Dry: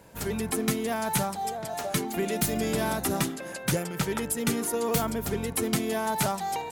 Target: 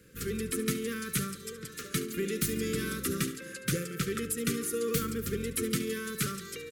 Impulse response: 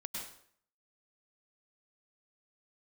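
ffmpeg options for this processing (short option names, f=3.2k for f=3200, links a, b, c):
-af "asuperstop=centerf=780:order=12:qfactor=1.2,aecho=1:1:71|142|213|284:0.211|0.0951|0.0428|0.0193,volume=-3.5dB"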